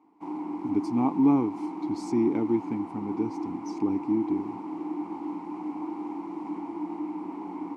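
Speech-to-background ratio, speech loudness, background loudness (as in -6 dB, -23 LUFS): 7.5 dB, -28.0 LUFS, -35.5 LUFS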